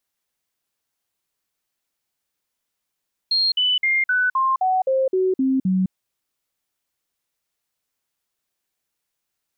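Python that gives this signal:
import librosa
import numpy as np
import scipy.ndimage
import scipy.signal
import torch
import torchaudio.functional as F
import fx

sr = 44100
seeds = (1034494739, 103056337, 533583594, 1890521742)

y = fx.stepped_sweep(sr, from_hz=4230.0, direction='down', per_octave=2, tones=10, dwell_s=0.21, gap_s=0.05, level_db=-16.0)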